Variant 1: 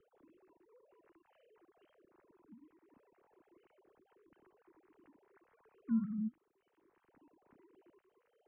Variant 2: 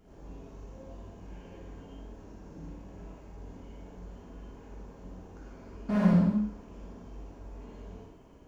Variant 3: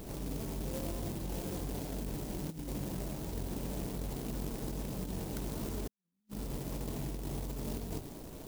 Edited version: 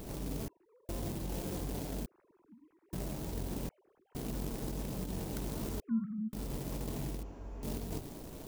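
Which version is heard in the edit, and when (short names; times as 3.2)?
3
0.48–0.89 from 1
2.06–2.93 from 1
3.69–4.15 from 1
5.8–6.33 from 1
7.23–7.63 from 2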